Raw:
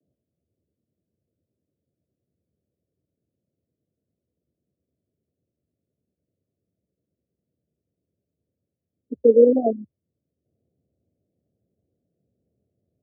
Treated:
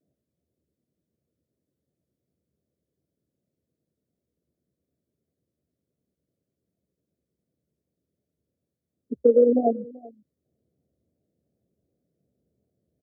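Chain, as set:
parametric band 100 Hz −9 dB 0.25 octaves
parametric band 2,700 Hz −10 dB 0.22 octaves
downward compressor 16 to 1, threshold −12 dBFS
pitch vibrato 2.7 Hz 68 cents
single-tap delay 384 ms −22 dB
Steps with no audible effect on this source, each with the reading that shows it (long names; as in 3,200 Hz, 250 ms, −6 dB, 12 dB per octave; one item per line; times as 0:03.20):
parametric band 2,700 Hz: nothing at its input above 760 Hz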